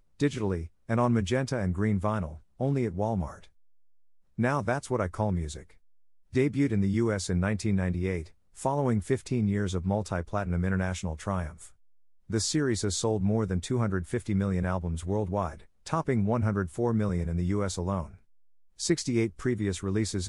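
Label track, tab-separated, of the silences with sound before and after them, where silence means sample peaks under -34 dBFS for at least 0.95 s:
3.310000	4.390000	silence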